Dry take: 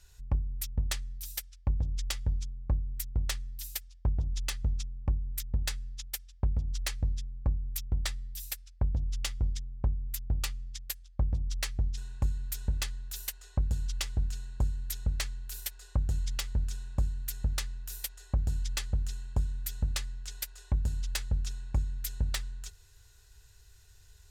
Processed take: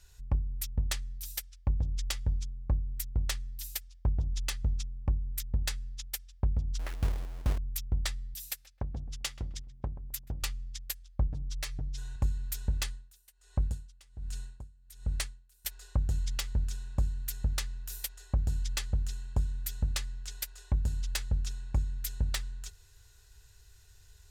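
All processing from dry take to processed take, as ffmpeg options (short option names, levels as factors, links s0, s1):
-filter_complex "[0:a]asettb=1/sr,asplit=3[s0][s1][s2];[s0]atrim=end=6.794[s3];[s1]atrim=start=6.79:end=7.58,asetpts=PTS-STARTPTS,afade=t=in:d=0.004:c=qsin,afade=t=out:st=0.786:d=0.004:c=qsin,lowpass=1400,acrusher=bits=3:mode=log:mix=0:aa=0.000001[s4];[s2]atrim=start=7.576[s5];[s3][s4]acrossfade=d=0.004:c1=hsin:c2=qsin[s6];[s6][s5]acrossfade=d=0.004:c1=qsin:c2=hsin,asettb=1/sr,asplit=3[s7][s8][s9];[s7]atrim=end=8.344[s10];[s8]atrim=start=8.34:end=10.43,asetpts=PTS-STARTPTS,afade=t=in:d=0.004:c=qsin,afade=t=out:st=2.086:d=0.004:c=qsin,lowshelf=f=120:g=-10,asplit=2[s11][s12];[s12]adelay=131,lowpass=f=1600:p=1,volume=0.188,asplit=2[s13][s14];[s14]adelay=131,lowpass=f=1600:p=1,volume=0.3,asplit=2[s15][s16];[s16]adelay=131,lowpass=f=1600:p=1,volume=0.3[s17];[s11][s13][s15][s17]amix=inputs=4:normalize=0,atrim=end_sample=92169[s18];[s9]atrim=start=10.426[s19];[s10][s18]acrossfade=d=0.004:c1=hsin:c2=qsin[s20];[s20][s19]acrossfade=d=0.004:c1=qsin:c2=hsin,asettb=1/sr,asplit=3[s21][s22][s23];[s21]atrim=end=11.274[s24];[s22]atrim=start=11.27:end=12.16,asetpts=PTS-STARTPTS,afade=t=in:d=0.004:c=qsin,afade=t=out:st=0.886:d=0.004:c=qsin,aecho=1:1:6.7:0.97,atrim=end_sample=39249,acompressor=threshold=0.0158:ratio=2:attack=3.2:release=140:knee=1:detection=peak[s25];[s23]atrim=start=12.156[s26];[s24][s25]acrossfade=d=0.004:c1=hsin:c2=qsin[s27];[s27][s26]acrossfade=d=0.004:c1=qsin:c2=hsin,asettb=1/sr,asplit=3[s28][s29][s30];[s28]atrim=end=12.854[s31];[s29]atrim=start=12.85:end=15.65,asetpts=PTS-STARTPTS,afade=t=in:d=0.004:c=qsin,afade=t=out:st=2.796:d=0.004:c=qsin,equalizer=f=9100:t=o:w=0.27:g=7,aeval=exprs='val(0)*pow(10,-26*(0.5-0.5*cos(2*PI*1.3*n/s))/20)':c=same[s32];[s30]atrim=start=15.646[s33];[s31][s32]acrossfade=d=0.004:c1=hsin:c2=qsin[s34];[s34][s33]acrossfade=d=0.004:c1=qsin:c2=hsin"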